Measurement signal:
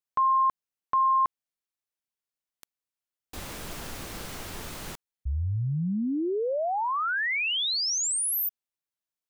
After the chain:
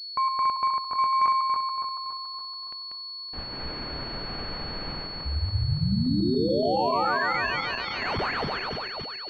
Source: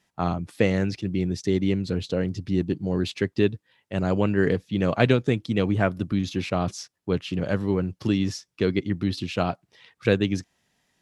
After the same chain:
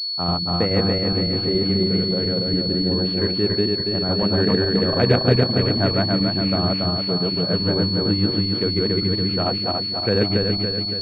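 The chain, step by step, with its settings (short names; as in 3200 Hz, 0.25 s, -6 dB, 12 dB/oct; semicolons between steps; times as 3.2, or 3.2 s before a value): regenerating reverse delay 0.141 s, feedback 74%, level 0 dB; pulse-width modulation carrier 4400 Hz; gain -1 dB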